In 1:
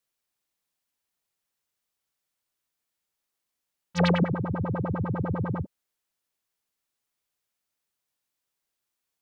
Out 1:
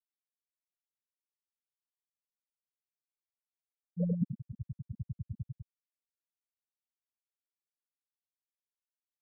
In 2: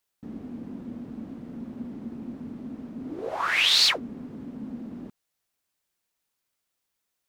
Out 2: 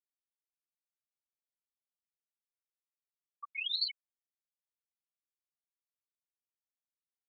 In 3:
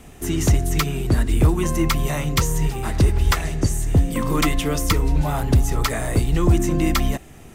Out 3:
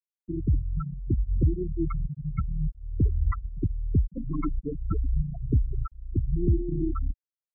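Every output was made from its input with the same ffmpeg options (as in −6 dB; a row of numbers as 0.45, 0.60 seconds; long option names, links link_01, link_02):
-af "afftfilt=real='re*gte(hypot(re,im),0.501)':imag='im*gte(hypot(re,im),0.501)':win_size=1024:overlap=0.75,volume=-6.5dB"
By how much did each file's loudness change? −11.0, −12.0, −8.5 LU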